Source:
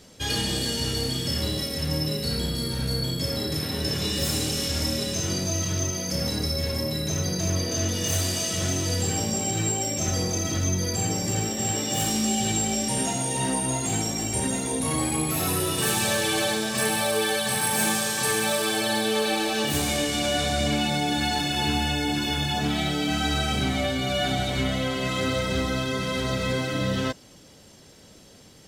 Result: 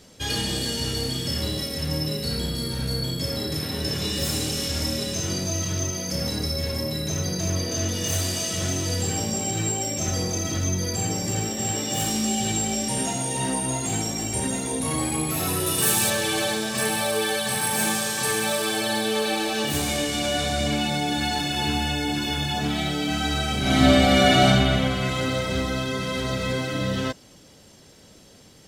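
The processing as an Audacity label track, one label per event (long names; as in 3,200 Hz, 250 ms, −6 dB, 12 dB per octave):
15.660000	16.100000	high-shelf EQ 8,700 Hz +10 dB
23.610000	24.460000	thrown reverb, RT60 2.6 s, DRR −10 dB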